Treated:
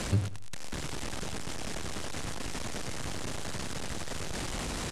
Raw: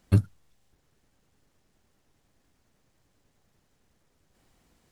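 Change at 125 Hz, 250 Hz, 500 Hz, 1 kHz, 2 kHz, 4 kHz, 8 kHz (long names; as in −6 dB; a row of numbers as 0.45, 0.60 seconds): −4.5, 0.0, +6.5, +16.0, +15.5, +21.0, +22.0 decibels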